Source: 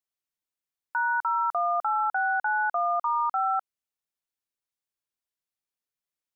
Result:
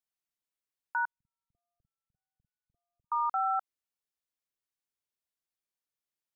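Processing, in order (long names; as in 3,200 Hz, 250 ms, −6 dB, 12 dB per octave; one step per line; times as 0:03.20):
0:01.05–0:03.12: inverse Chebyshev low-pass filter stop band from 770 Hz, stop band 70 dB
level −3.5 dB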